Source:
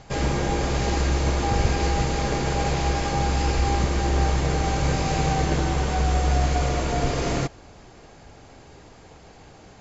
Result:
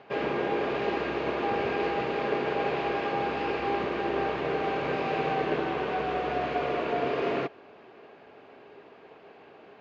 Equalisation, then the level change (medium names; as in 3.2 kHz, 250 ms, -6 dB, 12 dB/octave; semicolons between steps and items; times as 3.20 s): cabinet simulation 240–3500 Hz, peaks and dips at 240 Hz +3 dB, 410 Hz +10 dB, 640 Hz +5 dB, 1.1 kHz +5 dB, 1.6 kHz +4 dB, 2.6 kHz +6 dB; -6.0 dB